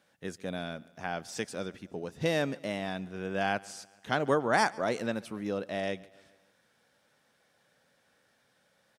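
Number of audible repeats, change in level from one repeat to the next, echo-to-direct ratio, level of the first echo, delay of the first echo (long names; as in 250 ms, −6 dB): 3, −5.0 dB, −21.5 dB, −23.0 dB, 141 ms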